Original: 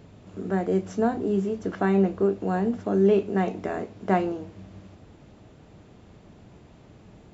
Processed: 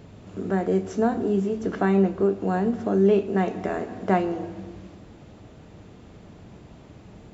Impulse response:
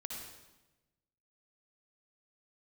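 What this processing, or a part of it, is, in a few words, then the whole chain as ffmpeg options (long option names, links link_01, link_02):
ducked reverb: -filter_complex "[0:a]asplit=3[link_01][link_02][link_03];[1:a]atrim=start_sample=2205[link_04];[link_02][link_04]afir=irnorm=-1:irlink=0[link_05];[link_03]apad=whole_len=323604[link_06];[link_05][link_06]sidechaincompress=threshold=-30dB:ratio=8:attack=42:release=364,volume=-2dB[link_07];[link_01][link_07]amix=inputs=2:normalize=0"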